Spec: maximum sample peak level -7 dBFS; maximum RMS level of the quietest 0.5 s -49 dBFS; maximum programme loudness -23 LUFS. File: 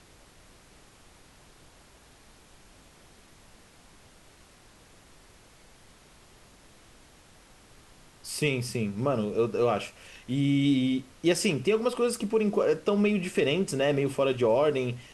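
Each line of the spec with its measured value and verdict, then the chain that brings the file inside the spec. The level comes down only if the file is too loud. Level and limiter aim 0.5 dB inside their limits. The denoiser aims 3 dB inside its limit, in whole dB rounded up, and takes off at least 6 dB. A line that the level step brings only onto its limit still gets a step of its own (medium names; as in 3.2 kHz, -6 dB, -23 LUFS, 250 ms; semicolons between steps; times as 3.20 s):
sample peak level -12.5 dBFS: pass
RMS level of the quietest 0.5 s -56 dBFS: pass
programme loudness -27.0 LUFS: pass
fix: none needed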